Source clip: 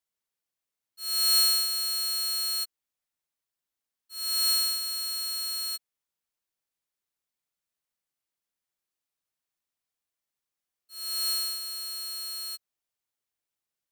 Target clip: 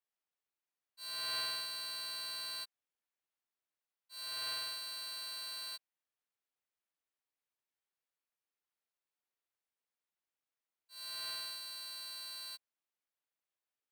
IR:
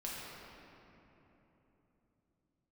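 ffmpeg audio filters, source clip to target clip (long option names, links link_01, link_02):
-filter_complex "[0:a]acrossover=split=3300[link_01][link_02];[link_02]acompressor=threshold=-32dB:ratio=4:attack=1:release=60[link_03];[link_01][link_03]amix=inputs=2:normalize=0,aeval=exprs='val(0)*sin(2*PI*260*n/s)':channel_layout=same,bass=frequency=250:gain=-10,treble=frequency=4000:gain=-9"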